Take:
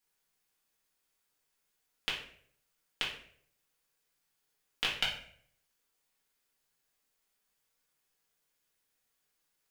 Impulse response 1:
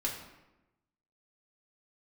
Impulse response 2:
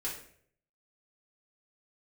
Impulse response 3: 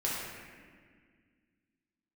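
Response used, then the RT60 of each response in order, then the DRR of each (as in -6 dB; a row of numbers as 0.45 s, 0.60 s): 2; 1.0 s, 0.60 s, 1.8 s; -3.0 dB, -6.0 dB, -6.5 dB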